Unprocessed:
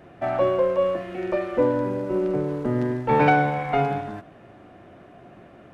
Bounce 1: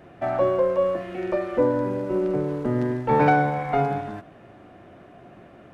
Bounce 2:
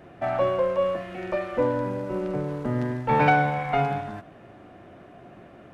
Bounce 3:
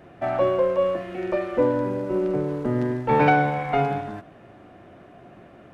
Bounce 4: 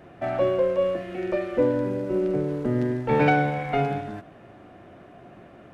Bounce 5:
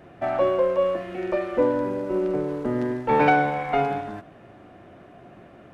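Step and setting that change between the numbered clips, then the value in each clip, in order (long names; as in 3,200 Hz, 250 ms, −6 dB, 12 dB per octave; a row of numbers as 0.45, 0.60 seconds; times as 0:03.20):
dynamic equaliser, frequency: 2,800, 360, 8,500, 1,000, 130 Hertz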